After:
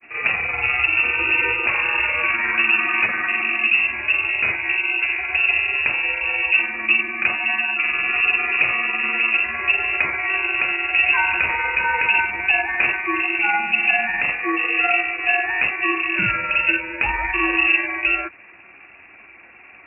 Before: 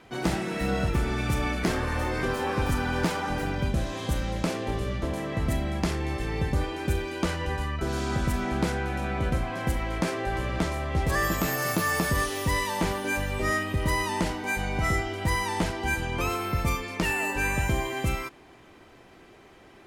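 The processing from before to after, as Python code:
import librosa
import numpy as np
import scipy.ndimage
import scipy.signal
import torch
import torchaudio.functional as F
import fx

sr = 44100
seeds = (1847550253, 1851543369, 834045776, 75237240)

y = fx.granulator(x, sr, seeds[0], grain_ms=100.0, per_s=20.0, spray_ms=26.0, spread_st=0)
y = fx.freq_invert(y, sr, carrier_hz=2700)
y = scipy.signal.sosfilt(scipy.signal.butter(2, 61.0, 'highpass', fs=sr, output='sos'), y)
y = y * 10.0 ** (8.0 / 20.0)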